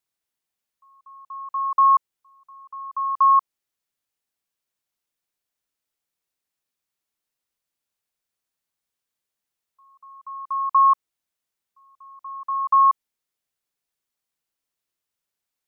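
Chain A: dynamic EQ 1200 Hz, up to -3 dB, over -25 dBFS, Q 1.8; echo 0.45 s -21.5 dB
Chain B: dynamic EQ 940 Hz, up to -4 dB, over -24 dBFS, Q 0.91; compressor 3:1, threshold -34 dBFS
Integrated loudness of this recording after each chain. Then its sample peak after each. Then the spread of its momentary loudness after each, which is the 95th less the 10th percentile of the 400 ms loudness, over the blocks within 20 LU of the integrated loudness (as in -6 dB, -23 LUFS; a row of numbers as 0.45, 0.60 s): -22.5, -34.5 LUFS; -13.0, -21.5 dBFS; 22, 16 LU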